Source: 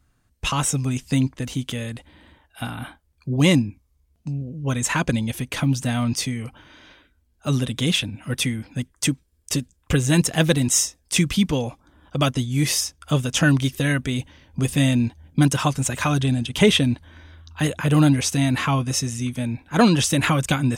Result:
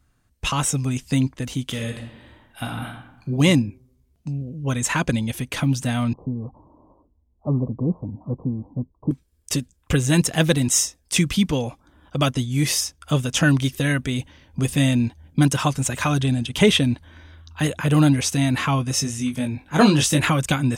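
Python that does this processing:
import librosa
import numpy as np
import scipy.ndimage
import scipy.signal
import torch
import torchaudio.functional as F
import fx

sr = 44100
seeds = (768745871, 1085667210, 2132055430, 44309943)

y = fx.reverb_throw(x, sr, start_s=1.65, length_s=1.71, rt60_s=0.89, drr_db=2.5)
y = fx.steep_lowpass(y, sr, hz=1100.0, slope=96, at=(6.13, 9.11))
y = fx.doubler(y, sr, ms=20.0, db=-5, at=(18.96, 20.21))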